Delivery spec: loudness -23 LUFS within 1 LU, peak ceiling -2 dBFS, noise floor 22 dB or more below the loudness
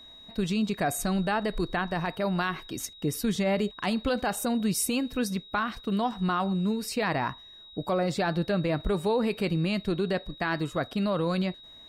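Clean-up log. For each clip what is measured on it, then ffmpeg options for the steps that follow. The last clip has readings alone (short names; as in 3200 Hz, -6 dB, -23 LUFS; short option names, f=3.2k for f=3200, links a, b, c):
steady tone 3800 Hz; tone level -47 dBFS; loudness -29.0 LUFS; peak -17.5 dBFS; loudness target -23.0 LUFS
-> -af "bandreject=f=3.8k:w=30"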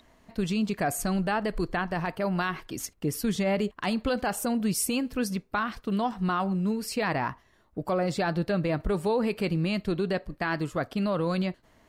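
steady tone none; loudness -29.0 LUFS; peak -18.0 dBFS; loudness target -23.0 LUFS
-> -af "volume=6dB"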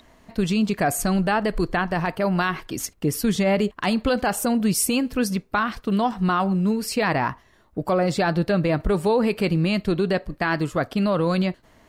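loudness -23.0 LUFS; peak -12.0 dBFS; noise floor -57 dBFS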